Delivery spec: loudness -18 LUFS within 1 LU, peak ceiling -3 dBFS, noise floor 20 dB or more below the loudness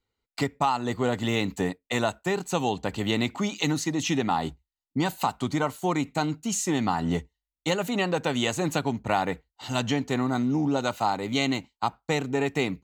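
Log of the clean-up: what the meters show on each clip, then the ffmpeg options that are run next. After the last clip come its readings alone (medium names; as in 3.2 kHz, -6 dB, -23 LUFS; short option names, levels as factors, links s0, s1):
loudness -27.5 LUFS; peak level -9.5 dBFS; loudness target -18.0 LUFS
-> -af "volume=2.99,alimiter=limit=0.708:level=0:latency=1"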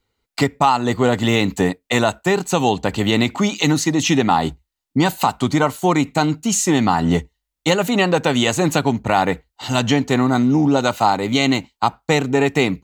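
loudness -18.0 LUFS; peak level -3.0 dBFS; noise floor -81 dBFS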